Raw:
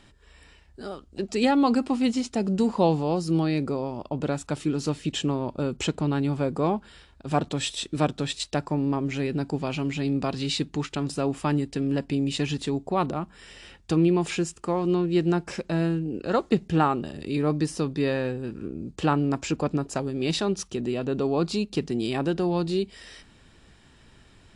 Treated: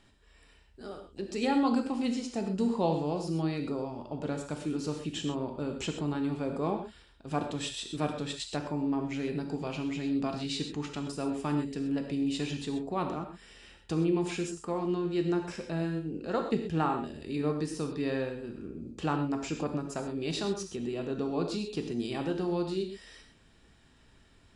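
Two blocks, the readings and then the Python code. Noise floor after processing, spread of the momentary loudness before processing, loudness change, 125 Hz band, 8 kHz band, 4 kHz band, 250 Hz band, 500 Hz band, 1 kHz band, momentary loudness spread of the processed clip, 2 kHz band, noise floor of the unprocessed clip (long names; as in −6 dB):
−61 dBFS, 8 LU, −6.5 dB, −8.0 dB, −6.5 dB, −6.5 dB, −6.0 dB, −6.0 dB, −6.5 dB, 8 LU, −6.5 dB, −56 dBFS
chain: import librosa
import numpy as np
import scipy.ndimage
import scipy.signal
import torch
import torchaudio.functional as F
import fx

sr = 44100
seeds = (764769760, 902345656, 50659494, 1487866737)

y = fx.rev_gated(x, sr, seeds[0], gate_ms=150, shape='flat', drr_db=4.0)
y = F.gain(torch.from_numpy(y), -8.0).numpy()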